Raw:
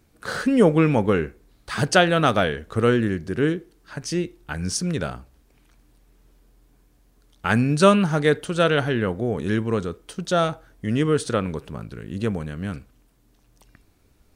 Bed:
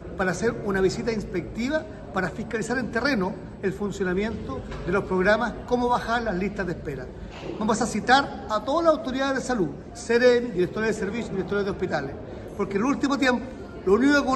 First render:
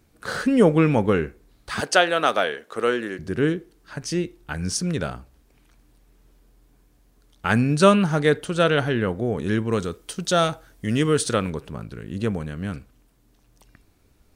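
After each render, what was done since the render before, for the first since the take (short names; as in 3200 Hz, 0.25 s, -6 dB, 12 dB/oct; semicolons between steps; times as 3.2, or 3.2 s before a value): 1.8–3.19 HPF 410 Hz; 9.72–11.5 high shelf 2900 Hz +8 dB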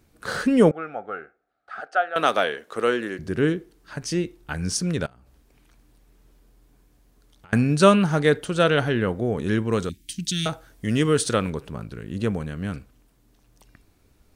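0.71–2.16 double band-pass 990 Hz, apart 0.85 oct; 5.06–7.53 compressor 8:1, threshold -48 dBFS; 9.89–10.46 inverse Chebyshev band-stop 450–1300 Hz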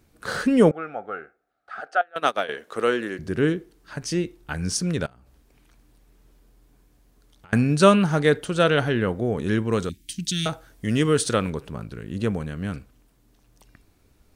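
2.01–2.49 upward expander 2.5:1, over -30 dBFS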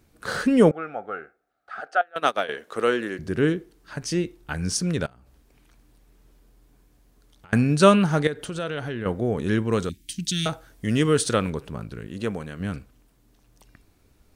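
8.27–9.06 compressor 3:1, threshold -29 dBFS; 12.07–12.6 low shelf 200 Hz -9.5 dB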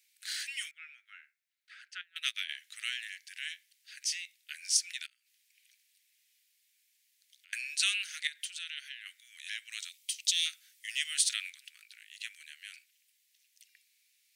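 steep high-pass 2000 Hz 48 dB/oct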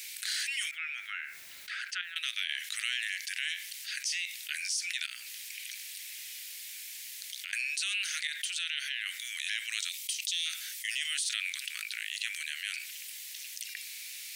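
limiter -23 dBFS, peak gain reduction 10 dB; fast leveller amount 70%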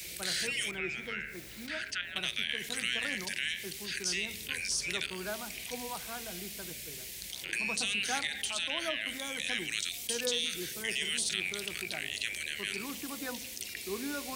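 add bed -19 dB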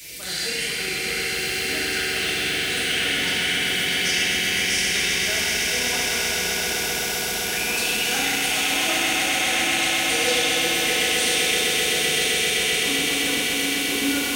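on a send: swelling echo 0.129 s, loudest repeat 8, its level -6 dB; on the sum: FDN reverb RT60 2.5 s, low-frequency decay 1×, high-frequency decay 0.95×, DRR -7 dB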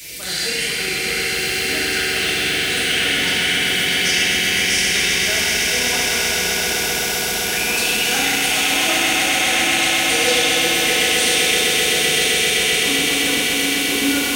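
gain +4.5 dB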